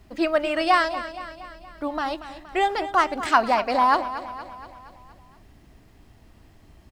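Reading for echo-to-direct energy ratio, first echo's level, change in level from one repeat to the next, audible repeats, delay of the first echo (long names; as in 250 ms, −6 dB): −11.5 dB, −13.0 dB, −5.0 dB, 5, 235 ms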